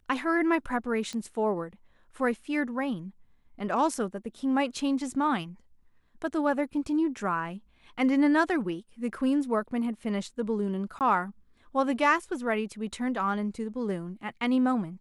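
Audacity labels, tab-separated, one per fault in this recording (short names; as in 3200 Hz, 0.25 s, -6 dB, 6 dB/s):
1.130000	1.130000	pop -24 dBFS
10.990000	11.010000	gap 18 ms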